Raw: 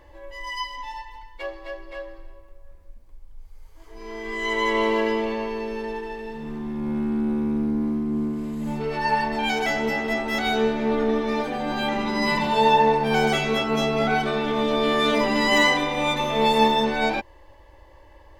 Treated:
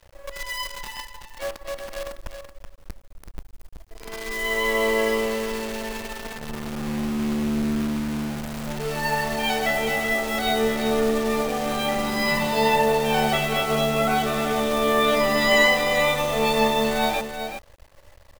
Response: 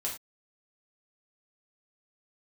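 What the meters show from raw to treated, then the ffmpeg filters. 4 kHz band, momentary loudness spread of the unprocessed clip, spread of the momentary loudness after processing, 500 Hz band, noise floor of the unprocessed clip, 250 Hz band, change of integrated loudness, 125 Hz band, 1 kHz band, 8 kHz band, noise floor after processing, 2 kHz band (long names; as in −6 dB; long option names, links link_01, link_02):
+0.5 dB, 17 LU, 15 LU, +1.0 dB, −49 dBFS, −1.5 dB, 0.0 dB, +1.0 dB, −1.5 dB, +6.5 dB, −49 dBFS, +1.5 dB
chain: -af "aecho=1:1:1.6:0.49,acrusher=bits=6:dc=4:mix=0:aa=0.000001,aecho=1:1:378:0.422,volume=-1dB"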